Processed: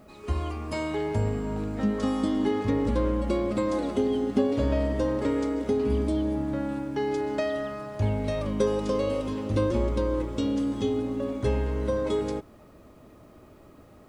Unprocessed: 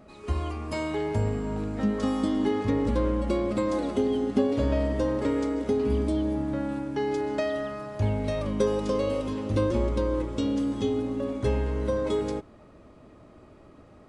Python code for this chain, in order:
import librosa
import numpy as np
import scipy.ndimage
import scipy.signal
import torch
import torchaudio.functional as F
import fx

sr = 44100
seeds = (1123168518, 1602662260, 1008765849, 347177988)

y = fx.quant_dither(x, sr, seeds[0], bits=12, dither='triangular')